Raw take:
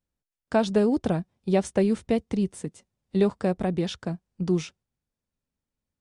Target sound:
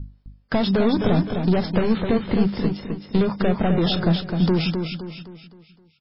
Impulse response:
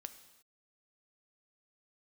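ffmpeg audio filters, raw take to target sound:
-filter_complex "[0:a]equalizer=f=2.1k:t=o:w=2.5:g=-3.5,asplit=2[a][b];[b]highpass=f=720:p=1,volume=25dB,asoftclip=type=tanh:threshold=-11.5dB[c];[a][c]amix=inputs=2:normalize=0,lowpass=f=4.3k:p=1,volume=-6dB,acompressor=threshold=-21dB:ratio=4,aeval=exprs='val(0)+0.0141*(sin(2*PI*50*n/s)+sin(2*PI*2*50*n/s)/2+sin(2*PI*3*50*n/s)/3+sin(2*PI*4*50*n/s)/4+sin(2*PI*5*50*n/s)/5)':c=same,bass=f=250:g=11,treble=f=4k:g=5,bandreject=f=50:t=h:w=6,bandreject=f=100:t=h:w=6,bandreject=f=150:t=h:w=6,bandreject=f=200:t=h:w=6,bandreject=f=250:t=h:w=6,bandreject=f=300:t=h:w=6,aecho=1:1:259|518|777|1036|1295:0.501|0.21|0.0884|0.0371|0.0156" -ar 12000 -c:a libmp3lame -b:a 16k

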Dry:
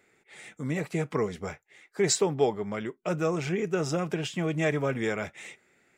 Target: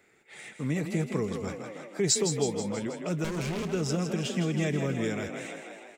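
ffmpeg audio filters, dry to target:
-filter_complex "[0:a]asettb=1/sr,asplit=3[a][b][c];[a]atrim=end=3.244[d];[b]atrim=start=3.24:end=3.72,asetpts=PTS-STARTPTS,afade=t=in:d=0.004:c=qsin,afade=t=out:st=0.476:d=0.004:c=qsin,aeval=exprs='0.0447*(abs(mod(val(0)/0.0447+3,4)-2)-1)':c=same[e];[c]atrim=start=3.716[f];[d][e]acrossfade=d=0.004:c1=hsin:c2=qsin[g];[g][f]acrossfade=d=0.004:c1=qsin:c2=hsin,asplit=8[h][i][j][k][l][m][n][o];[i]adelay=161,afreqshift=33,volume=-8dB[p];[j]adelay=322,afreqshift=66,volume=-12.6dB[q];[k]adelay=483,afreqshift=99,volume=-17.2dB[r];[l]adelay=644,afreqshift=132,volume=-21.7dB[s];[m]adelay=805,afreqshift=165,volume=-26.3dB[t];[n]adelay=966,afreqshift=198,volume=-30.9dB[u];[o]adelay=1127,afreqshift=231,volume=-35.5dB[v];[h][p][q][r][s][t][u][v]amix=inputs=8:normalize=0,acrossover=split=350|3000[w][x][y];[x]acompressor=threshold=-40dB:ratio=3[z];[w][z][y]amix=inputs=3:normalize=0,volume=1.5dB"

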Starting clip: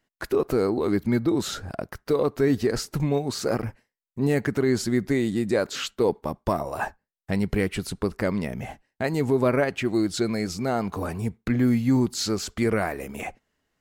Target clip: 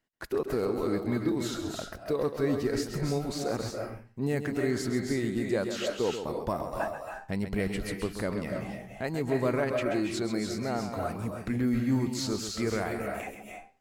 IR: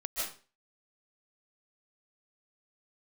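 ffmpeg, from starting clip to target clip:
-filter_complex "[0:a]asplit=2[a][b];[1:a]atrim=start_sample=2205,adelay=133[c];[b][c]afir=irnorm=-1:irlink=0,volume=-6dB[d];[a][d]amix=inputs=2:normalize=0,volume=-7dB"

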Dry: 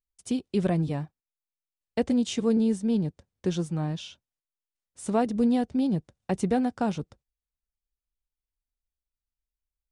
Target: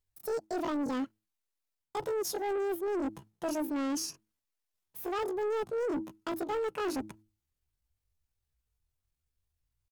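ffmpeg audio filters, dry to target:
-af "bandreject=f=60:t=h:w=6,bandreject=f=120:t=h:w=6,bandreject=f=180:t=h:w=6,areverse,acompressor=threshold=-34dB:ratio=5,areverse,asetrate=78577,aresample=44100,atempo=0.561231,asoftclip=type=tanh:threshold=-36dB,volume=7.5dB"

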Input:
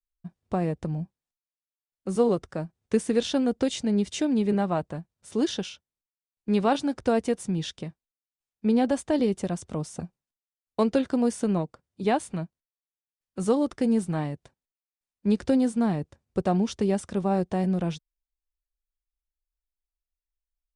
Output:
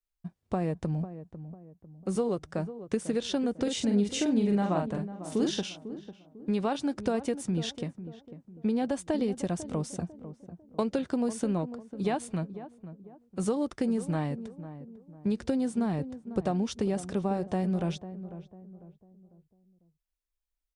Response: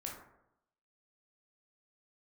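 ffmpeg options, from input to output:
-filter_complex "[0:a]acompressor=threshold=-25dB:ratio=6,asettb=1/sr,asplit=3[a][b][c];[a]atrim=end=3.634[d];[b]atrim=start=3.63:end=5.63,asetpts=PTS-STARTPTS,afade=t=in:d=0.004:c=qsin,afade=t=out:st=1.996:d=0.004:c=qsin,asplit=2[e][f];[f]adelay=44,volume=-3.5dB[g];[e][g]amix=inputs=2:normalize=0,atrim=end_sample=88200[h];[c]atrim=start=5.626[i];[d][h]acrossfade=d=0.004:c1=hsin:c2=qsin[j];[j][i]acrossfade=d=0.004:c1=qsin:c2=hsin,asplit=2[k][l];[l]adelay=498,lowpass=f=880:p=1,volume=-12dB,asplit=2[m][n];[n]adelay=498,lowpass=f=880:p=1,volume=0.41,asplit=2[o][p];[p]adelay=498,lowpass=f=880:p=1,volume=0.41,asplit=2[q][r];[r]adelay=498,lowpass=f=880:p=1,volume=0.41[s];[k][m][o][q][s]amix=inputs=5:normalize=0"

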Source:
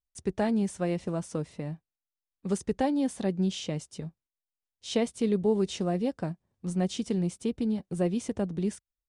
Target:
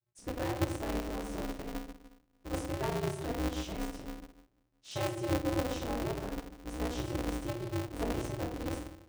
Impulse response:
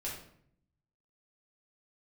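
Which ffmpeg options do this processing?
-filter_complex "[1:a]atrim=start_sample=2205[a];[0:a][a]afir=irnorm=-1:irlink=0,aeval=exprs='val(0)*sgn(sin(2*PI*120*n/s))':c=same,volume=-8dB"

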